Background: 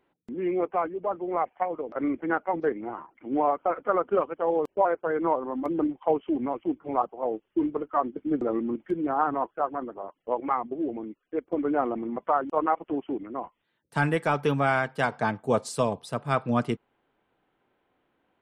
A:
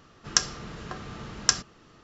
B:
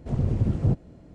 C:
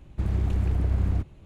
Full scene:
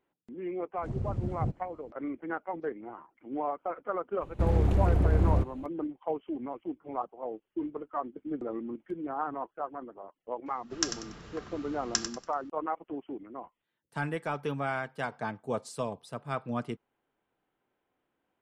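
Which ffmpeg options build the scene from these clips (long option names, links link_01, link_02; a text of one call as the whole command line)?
ffmpeg -i bed.wav -i cue0.wav -i cue1.wav -i cue2.wav -filter_complex "[0:a]volume=-8.5dB[link_01];[3:a]equalizer=frequency=520:width_type=o:width=2:gain=8[link_02];[1:a]aecho=1:1:95|190|285|380:0.355|0.114|0.0363|0.0116[link_03];[2:a]atrim=end=1.14,asetpts=PTS-STARTPTS,volume=-9.5dB,afade=type=in:duration=0.004:curve=hsin,afade=type=out:start_time=1.136:duration=0.004:curve=hsin,adelay=770[link_04];[link_02]atrim=end=1.45,asetpts=PTS-STARTPTS,volume=-0.5dB,afade=type=in:duration=0.004:curve=hsin,afade=type=out:start_time=1.446:duration=0.004:curve=hsin,adelay=185661S[link_05];[link_03]atrim=end=2.03,asetpts=PTS-STARTPTS,volume=-8dB,afade=type=in:duration=0.004:curve=hsin,afade=type=out:start_time=2.026:duration=0.004:curve=hsin,adelay=10460[link_06];[link_01][link_04][link_05][link_06]amix=inputs=4:normalize=0" out.wav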